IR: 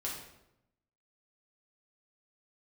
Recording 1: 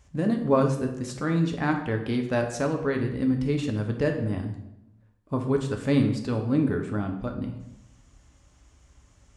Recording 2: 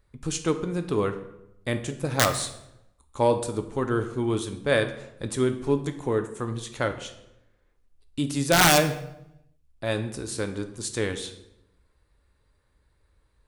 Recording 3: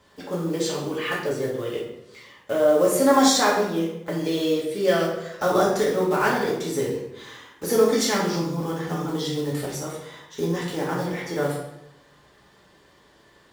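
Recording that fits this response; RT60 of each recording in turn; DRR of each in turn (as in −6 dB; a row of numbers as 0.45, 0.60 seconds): 3; 0.85, 0.85, 0.85 seconds; 3.0, 7.0, −5.0 decibels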